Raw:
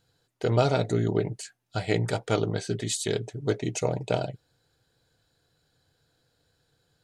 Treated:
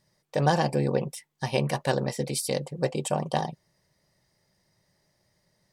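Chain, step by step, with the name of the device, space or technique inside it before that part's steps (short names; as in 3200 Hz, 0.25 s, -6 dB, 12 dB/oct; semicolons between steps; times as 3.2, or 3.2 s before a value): nightcore (varispeed +23%)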